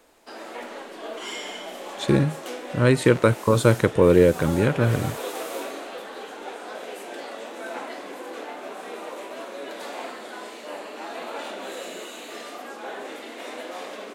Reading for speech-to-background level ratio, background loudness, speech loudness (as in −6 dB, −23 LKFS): 15.5 dB, −35.5 LKFS, −20.0 LKFS